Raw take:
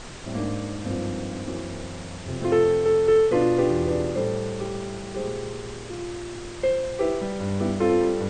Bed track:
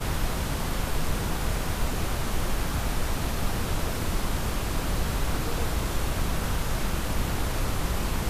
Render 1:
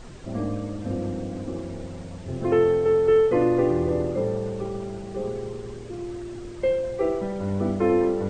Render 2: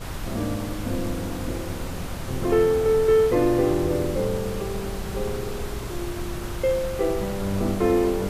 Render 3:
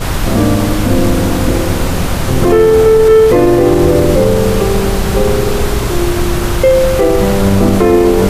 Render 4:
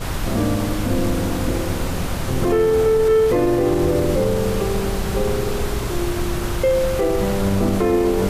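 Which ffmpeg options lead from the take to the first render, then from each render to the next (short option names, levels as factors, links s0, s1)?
-af "afftdn=nr=10:nf=-37"
-filter_complex "[1:a]volume=0.562[s0];[0:a][s0]amix=inputs=2:normalize=0"
-af "acontrast=52,alimiter=level_in=3.55:limit=0.891:release=50:level=0:latency=1"
-af "volume=0.355"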